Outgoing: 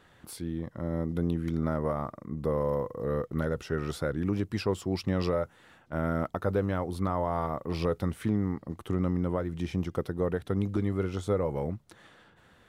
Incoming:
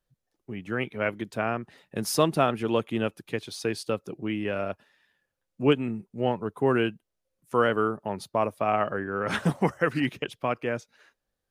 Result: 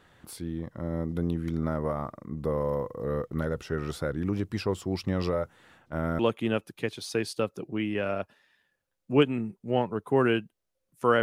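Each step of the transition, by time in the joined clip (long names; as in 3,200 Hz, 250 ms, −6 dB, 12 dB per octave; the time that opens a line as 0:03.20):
outgoing
0:06.19: continue with incoming from 0:02.69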